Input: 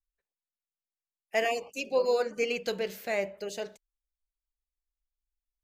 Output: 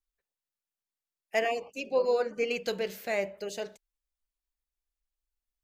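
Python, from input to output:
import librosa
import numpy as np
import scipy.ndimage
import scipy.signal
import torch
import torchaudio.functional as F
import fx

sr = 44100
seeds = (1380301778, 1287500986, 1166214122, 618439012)

y = fx.high_shelf(x, sr, hz=4600.0, db=-10.5, at=(1.39, 2.51))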